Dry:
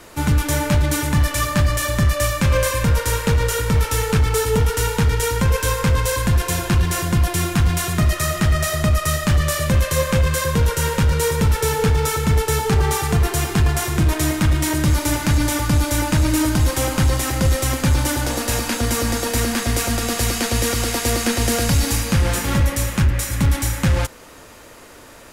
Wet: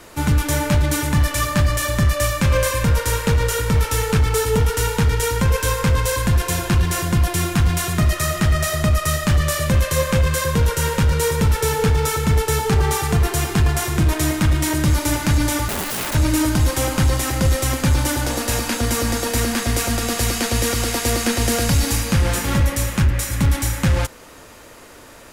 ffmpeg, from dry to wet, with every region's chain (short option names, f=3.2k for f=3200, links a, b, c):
-filter_complex "[0:a]asettb=1/sr,asplit=3[a][b][c];[a]atrim=end=15.684[d];[b]atrim=start=15.68:end=16.15,asetpts=PTS-STARTPTS,afade=t=in:d=0.004:c=qsin,afade=t=out:st=0.466:d=0.004:c=qsin,equalizer=f=5.3k:w=2.2:g=-13.5,acompressor=threshold=-17dB:ratio=12:attack=3.2:release=140:knee=1:detection=peak,aeval=exprs='(mod(10*val(0)+1,2)-1)/10':c=same[e];[c]atrim=start=16.146[f];[d][e]acrossfade=d=0.004:c1=hsin:c2=qsin[g];[g][f]acrossfade=d=0.004:c1=qsin:c2=hsin"